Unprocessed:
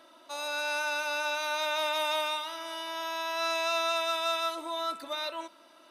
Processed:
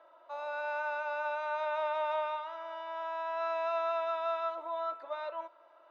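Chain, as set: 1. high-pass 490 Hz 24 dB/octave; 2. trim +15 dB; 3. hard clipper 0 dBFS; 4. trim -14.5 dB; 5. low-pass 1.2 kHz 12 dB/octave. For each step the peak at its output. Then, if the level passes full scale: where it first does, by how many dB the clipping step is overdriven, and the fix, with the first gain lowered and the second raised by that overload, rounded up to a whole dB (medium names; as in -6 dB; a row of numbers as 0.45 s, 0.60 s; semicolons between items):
-19.5 dBFS, -4.5 dBFS, -4.5 dBFS, -19.0 dBFS, -24.5 dBFS; nothing clips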